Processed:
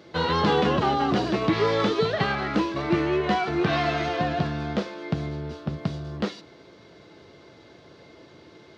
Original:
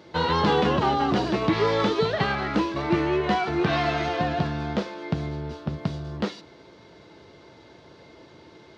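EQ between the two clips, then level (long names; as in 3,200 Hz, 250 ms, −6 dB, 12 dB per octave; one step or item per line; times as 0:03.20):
high-pass filter 63 Hz
notch filter 910 Hz, Q 12
0.0 dB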